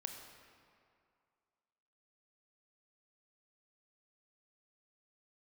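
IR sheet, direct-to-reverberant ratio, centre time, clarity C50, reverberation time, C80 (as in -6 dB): 4.0 dB, 51 ms, 5.0 dB, 2.3 s, 6.0 dB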